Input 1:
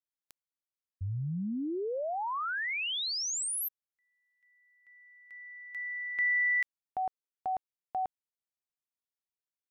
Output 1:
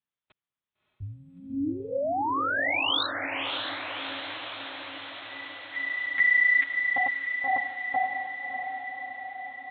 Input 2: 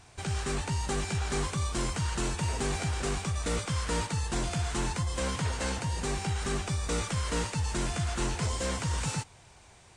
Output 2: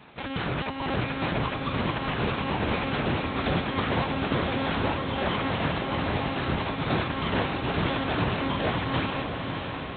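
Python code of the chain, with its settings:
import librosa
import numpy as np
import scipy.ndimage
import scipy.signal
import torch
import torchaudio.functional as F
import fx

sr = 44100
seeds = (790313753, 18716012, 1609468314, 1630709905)

y = fx.lpc_monotone(x, sr, seeds[0], pitch_hz=270.0, order=8)
y = scipy.signal.sosfilt(scipy.signal.butter(2, 96.0, 'highpass', fs=sr, output='sos'), y)
y = fx.echo_diffused(y, sr, ms=613, feedback_pct=68, wet_db=-6)
y = y * 10.0 ** (6.0 / 20.0)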